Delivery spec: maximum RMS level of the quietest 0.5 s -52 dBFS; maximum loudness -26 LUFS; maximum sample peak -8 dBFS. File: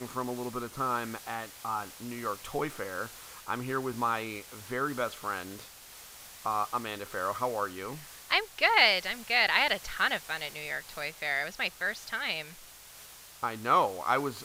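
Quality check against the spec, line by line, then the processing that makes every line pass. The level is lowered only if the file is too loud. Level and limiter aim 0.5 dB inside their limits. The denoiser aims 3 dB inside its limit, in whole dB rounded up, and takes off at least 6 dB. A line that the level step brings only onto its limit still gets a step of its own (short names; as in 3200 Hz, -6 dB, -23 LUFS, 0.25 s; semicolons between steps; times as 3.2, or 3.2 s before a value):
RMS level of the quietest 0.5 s -51 dBFS: fail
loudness -30.5 LUFS: OK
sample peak -7.5 dBFS: fail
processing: denoiser 6 dB, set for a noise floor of -51 dBFS; limiter -8.5 dBFS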